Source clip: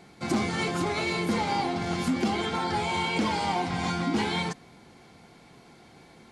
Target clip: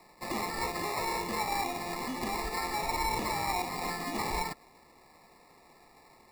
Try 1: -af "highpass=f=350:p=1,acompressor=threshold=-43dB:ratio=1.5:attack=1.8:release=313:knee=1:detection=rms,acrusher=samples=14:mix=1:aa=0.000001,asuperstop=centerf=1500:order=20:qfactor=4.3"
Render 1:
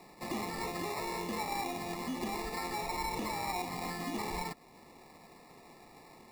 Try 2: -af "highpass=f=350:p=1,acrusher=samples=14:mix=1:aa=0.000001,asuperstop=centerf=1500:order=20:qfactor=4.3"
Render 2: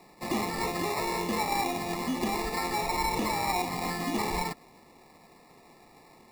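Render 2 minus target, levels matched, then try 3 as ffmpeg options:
250 Hz band +3.5 dB
-af "highpass=f=990:p=1,acrusher=samples=14:mix=1:aa=0.000001,asuperstop=centerf=1500:order=20:qfactor=4.3"

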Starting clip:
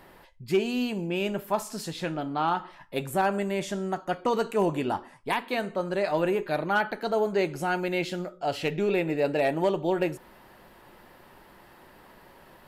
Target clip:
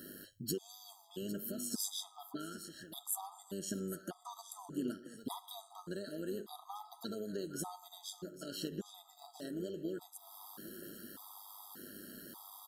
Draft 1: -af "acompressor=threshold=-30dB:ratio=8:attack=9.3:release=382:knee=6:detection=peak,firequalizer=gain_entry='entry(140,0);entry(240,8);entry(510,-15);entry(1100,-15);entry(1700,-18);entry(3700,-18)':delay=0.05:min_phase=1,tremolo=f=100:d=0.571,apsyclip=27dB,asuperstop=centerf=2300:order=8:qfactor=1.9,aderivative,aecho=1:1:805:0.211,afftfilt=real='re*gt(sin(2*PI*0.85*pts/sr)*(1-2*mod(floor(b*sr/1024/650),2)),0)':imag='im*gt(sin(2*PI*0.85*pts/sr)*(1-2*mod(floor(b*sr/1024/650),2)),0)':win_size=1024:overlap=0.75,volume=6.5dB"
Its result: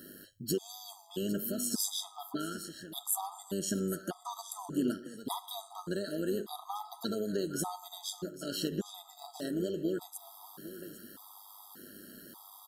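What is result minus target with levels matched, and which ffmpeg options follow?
compressor: peak gain reduction -7.5 dB
-af "acompressor=threshold=-38.5dB:ratio=8:attack=9.3:release=382:knee=6:detection=peak,firequalizer=gain_entry='entry(140,0);entry(240,8);entry(510,-15);entry(1100,-15);entry(1700,-18);entry(3700,-18)':delay=0.05:min_phase=1,tremolo=f=100:d=0.571,apsyclip=27dB,asuperstop=centerf=2300:order=8:qfactor=1.9,aderivative,aecho=1:1:805:0.211,afftfilt=real='re*gt(sin(2*PI*0.85*pts/sr)*(1-2*mod(floor(b*sr/1024/650),2)),0)':imag='im*gt(sin(2*PI*0.85*pts/sr)*(1-2*mod(floor(b*sr/1024/650),2)),0)':win_size=1024:overlap=0.75,volume=6.5dB"

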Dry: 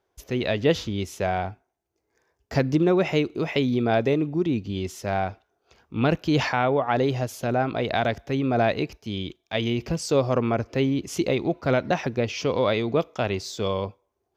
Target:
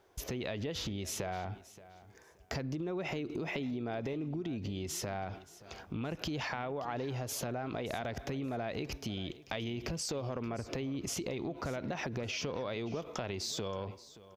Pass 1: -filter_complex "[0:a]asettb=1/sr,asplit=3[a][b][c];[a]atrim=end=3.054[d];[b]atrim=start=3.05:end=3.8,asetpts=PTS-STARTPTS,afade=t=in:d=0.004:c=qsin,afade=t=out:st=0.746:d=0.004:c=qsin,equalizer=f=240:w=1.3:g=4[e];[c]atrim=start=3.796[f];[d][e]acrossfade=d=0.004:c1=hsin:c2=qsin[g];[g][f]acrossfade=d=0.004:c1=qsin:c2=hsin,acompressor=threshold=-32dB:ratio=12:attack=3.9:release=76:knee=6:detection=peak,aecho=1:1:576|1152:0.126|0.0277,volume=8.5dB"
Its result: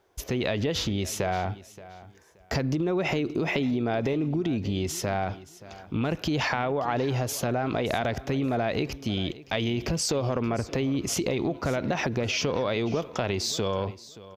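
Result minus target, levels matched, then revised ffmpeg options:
compressor: peak gain reduction -10.5 dB
-filter_complex "[0:a]asettb=1/sr,asplit=3[a][b][c];[a]atrim=end=3.054[d];[b]atrim=start=3.05:end=3.8,asetpts=PTS-STARTPTS,afade=t=in:d=0.004:c=qsin,afade=t=out:st=0.746:d=0.004:c=qsin,equalizer=f=240:w=1.3:g=4[e];[c]atrim=start=3.796[f];[d][e]acrossfade=d=0.004:c1=hsin:c2=qsin[g];[g][f]acrossfade=d=0.004:c1=qsin:c2=hsin,acompressor=threshold=-43.5dB:ratio=12:attack=3.9:release=76:knee=6:detection=peak,aecho=1:1:576|1152:0.126|0.0277,volume=8.5dB"

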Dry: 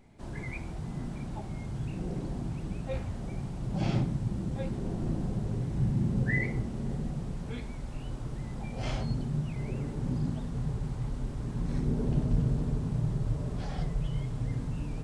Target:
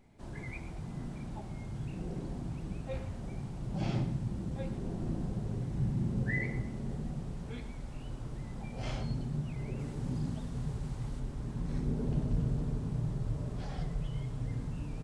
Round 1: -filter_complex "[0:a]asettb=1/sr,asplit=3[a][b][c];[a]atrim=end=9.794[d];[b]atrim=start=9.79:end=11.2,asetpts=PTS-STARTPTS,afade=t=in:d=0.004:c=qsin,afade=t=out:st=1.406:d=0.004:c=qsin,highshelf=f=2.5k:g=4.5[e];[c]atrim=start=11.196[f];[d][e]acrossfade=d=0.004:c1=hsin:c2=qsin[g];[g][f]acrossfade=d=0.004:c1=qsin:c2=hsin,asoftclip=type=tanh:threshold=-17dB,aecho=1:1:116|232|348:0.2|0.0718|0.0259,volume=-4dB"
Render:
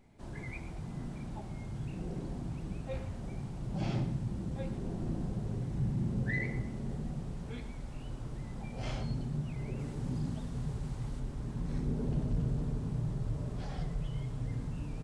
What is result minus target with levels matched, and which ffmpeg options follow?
soft clip: distortion +20 dB
-filter_complex "[0:a]asettb=1/sr,asplit=3[a][b][c];[a]atrim=end=9.794[d];[b]atrim=start=9.79:end=11.2,asetpts=PTS-STARTPTS,afade=t=in:d=0.004:c=qsin,afade=t=out:st=1.406:d=0.004:c=qsin,highshelf=f=2.5k:g=4.5[e];[c]atrim=start=11.196[f];[d][e]acrossfade=d=0.004:c1=hsin:c2=qsin[g];[g][f]acrossfade=d=0.004:c1=qsin:c2=hsin,asoftclip=type=tanh:threshold=-6dB,aecho=1:1:116|232|348:0.2|0.0718|0.0259,volume=-4dB"

